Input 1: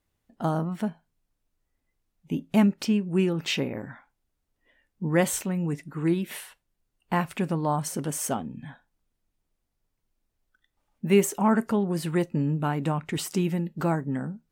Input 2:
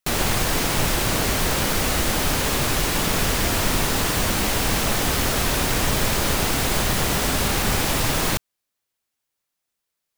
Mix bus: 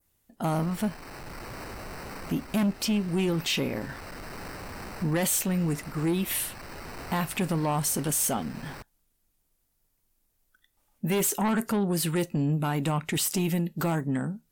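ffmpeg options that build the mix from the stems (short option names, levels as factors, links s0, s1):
-filter_complex "[0:a]equalizer=f=14000:w=0.37:g=14.5,asoftclip=type=tanh:threshold=0.1,volume=1.26,asplit=2[s0][s1];[1:a]acrusher=samples=13:mix=1:aa=0.000001,asoftclip=type=hard:threshold=0.0841,adelay=450,volume=0.178[s2];[s1]apad=whole_len=468718[s3];[s2][s3]sidechaincompress=threshold=0.0355:ratio=6:attack=16:release=1160[s4];[s0][s4]amix=inputs=2:normalize=0,adynamicequalizer=threshold=0.00794:dfrequency=3500:dqfactor=0.87:tfrequency=3500:tqfactor=0.87:attack=5:release=100:ratio=0.375:range=2:mode=boostabove:tftype=bell,alimiter=limit=0.0944:level=0:latency=1:release=20"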